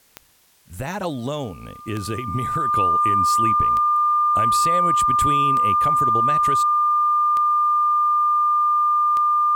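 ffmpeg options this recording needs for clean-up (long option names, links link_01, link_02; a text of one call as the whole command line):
ffmpeg -i in.wav -af "adeclick=threshold=4,bandreject=frequency=1200:width=30,agate=range=-21dB:threshold=-29dB" out.wav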